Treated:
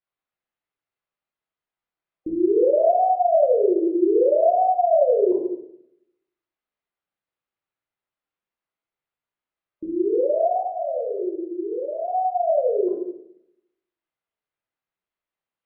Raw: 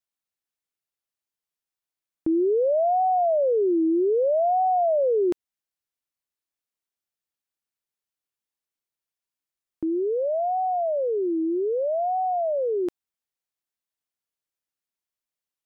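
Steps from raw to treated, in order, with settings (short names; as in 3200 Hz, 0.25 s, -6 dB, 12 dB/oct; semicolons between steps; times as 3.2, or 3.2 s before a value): air absorption 420 m; 10.58–12.08 expander -19 dBFS; low shelf 440 Hz -6.5 dB; 10.71–11.26 painted sound fall 340–690 Hz -38 dBFS; in parallel at -5.5 dB: soft clip -36.5 dBFS, distortion -7 dB; on the sum: spectral gate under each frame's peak -25 dB strong; reverb RT60 0.75 s, pre-delay 15 ms, DRR -4.5 dB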